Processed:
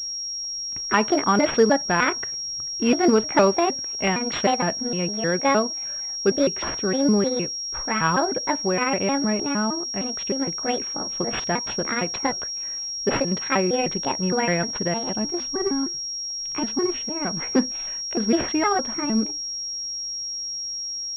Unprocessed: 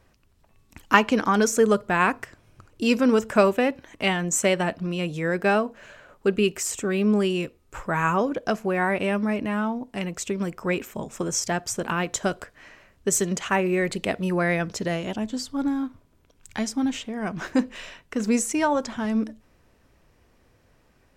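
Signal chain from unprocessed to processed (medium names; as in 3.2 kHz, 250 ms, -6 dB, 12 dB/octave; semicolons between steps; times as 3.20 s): pitch shift switched off and on +5.5 st, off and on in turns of 154 ms; in parallel at -9 dB: crossover distortion -37 dBFS; on the sum: loudness maximiser +4.5 dB; class-D stage that switches slowly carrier 5.6 kHz; trim -5 dB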